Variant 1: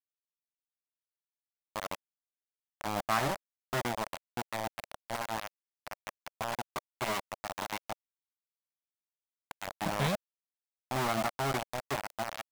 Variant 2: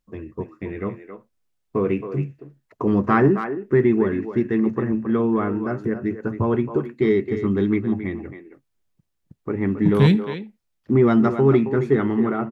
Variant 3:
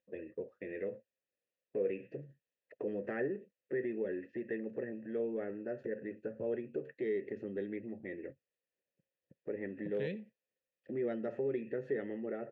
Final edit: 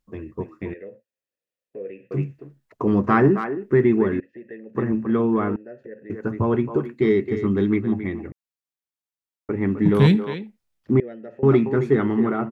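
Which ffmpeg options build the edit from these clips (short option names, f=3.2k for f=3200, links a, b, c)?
-filter_complex "[2:a]asplit=4[a][b][c][d];[1:a]asplit=6[e][f][g][h][i][j];[e]atrim=end=0.742[k];[a]atrim=start=0.738:end=2.112[l];[f]atrim=start=2.108:end=4.202[m];[b]atrim=start=4.198:end=4.752[n];[g]atrim=start=4.748:end=5.562[o];[c]atrim=start=5.558:end=6.102[p];[h]atrim=start=6.098:end=8.322[q];[0:a]atrim=start=8.318:end=9.492[r];[i]atrim=start=9.488:end=11.002[s];[d]atrim=start=10.998:end=11.432[t];[j]atrim=start=11.428[u];[k][l]acrossfade=d=0.004:c1=hsin:c2=hsin[v];[v][m]acrossfade=d=0.004:c1=hsin:c2=hsin[w];[w][n]acrossfade=d=0.004:c1=hsin:c2=hsin[x];[x][o]acrossfade=d=0.004:c1=hsin:c2=hsin[y];[y][p]acrossfade=d=0.004:c1=hsin:c2=hsin[z];[z][q]acrossfade=d=0.004:c1=hsin:c2=hsin[aa];[aa][r]acrossfade=d=0.004:c1=hsin:c2=hsin[ab];[ab][s]acrossfade=d=0.004:c1=hsin:c2=hsin[ac];[ac][t]acrossfade=d=0.004:c1=hsin:c2=hsin[ad];[ad][u]acrossfade=d=0.004:c1=hsin:c2=hsin"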